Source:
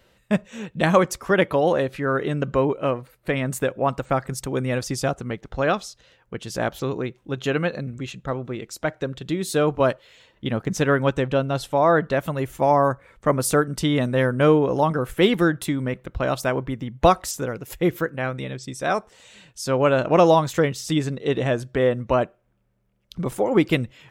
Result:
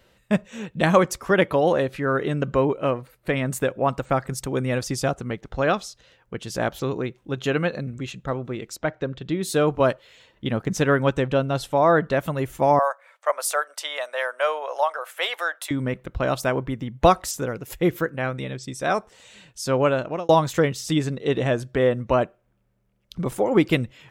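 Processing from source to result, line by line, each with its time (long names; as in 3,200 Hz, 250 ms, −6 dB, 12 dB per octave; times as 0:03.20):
0:08.76–0:09.43: high-frequency loss of the air 120 metres
0:12.79–0:15.71: elliptic high-pass filter 590 Hz, stop band 80 dB
0:19.79–0:20.29: fade out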